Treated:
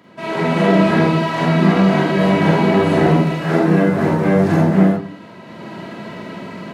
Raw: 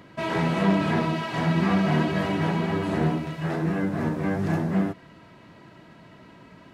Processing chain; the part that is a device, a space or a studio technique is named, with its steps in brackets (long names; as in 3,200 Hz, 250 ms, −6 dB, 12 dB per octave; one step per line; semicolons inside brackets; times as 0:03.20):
far laptop microphone (convolution reverb RT60 0.40 s, pre-delay 37 ms, DRR −3 dB; high-pass filter 160 Hz 12 dB per octave; automatic gain control gain up to 14.5 dB)
level −1 dB